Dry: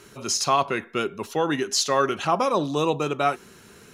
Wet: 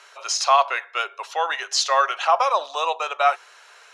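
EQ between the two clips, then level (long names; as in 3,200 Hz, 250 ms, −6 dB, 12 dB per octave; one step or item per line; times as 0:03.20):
Butterworth high-pass 610 Hz 36 dB per octave
high-frequency loss of the air 79 metres
+5.5 dB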